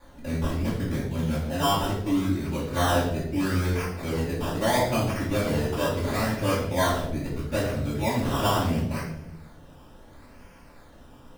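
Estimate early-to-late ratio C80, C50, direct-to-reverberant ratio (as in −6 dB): 6.0 dB, 3.0 dB, −14.0 dB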